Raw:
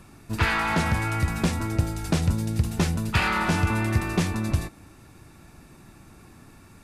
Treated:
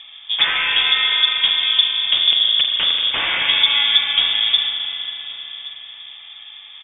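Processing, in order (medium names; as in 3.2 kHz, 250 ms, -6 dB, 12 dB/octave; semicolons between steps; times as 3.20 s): in parallel at -2 dB: compression 12:1, threshold -29 dBFS, peak gain reduction 13.5 dB; 2.32–3.47 s: on the sum: integer overflow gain 15 dB; distance through air 400 m; on a send: delay 1124 ms -20 dB; on the sum: frequency inversion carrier 3.5 kHz; spring tank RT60 3.7 s, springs 39 ms, chirp 60 ms, DRR 1.5 dB; trim +4 dB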